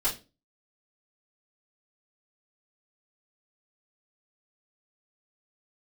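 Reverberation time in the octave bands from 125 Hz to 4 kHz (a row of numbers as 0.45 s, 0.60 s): 0.40 s, 0.40 s, 0.35 s, 0.25 s, 0.25 s, 0.25 s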